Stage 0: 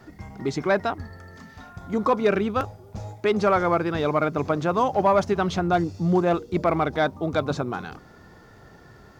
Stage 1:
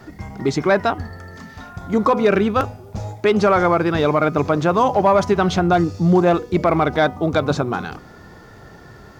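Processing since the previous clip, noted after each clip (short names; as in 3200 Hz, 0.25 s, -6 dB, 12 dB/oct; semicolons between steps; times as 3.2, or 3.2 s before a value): de-hum 247.7 Hz, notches 13; maximiser +12.5 dB; gain -5.5 dB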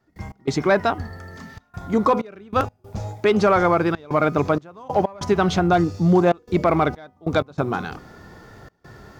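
step gate ".x.xxxxxxx.xxx." 95 bpm -24 dB; gain -1.5 dB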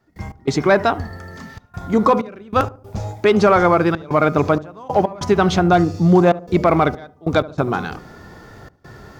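darkening echo 73 ms, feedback 45%, low-pass 830 Hz, level -16.5 dB; gain +3.5 dB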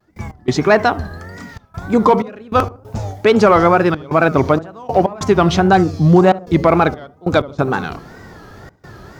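wow and flutter 140 cents; gain +2.5 dB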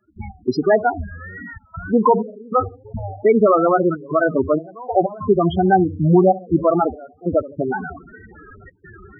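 bell 130 Hz -7 dB 0.64 oct; loudest bins only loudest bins 8; mismatched tape noise reduction encoder only; gain -1.5 dB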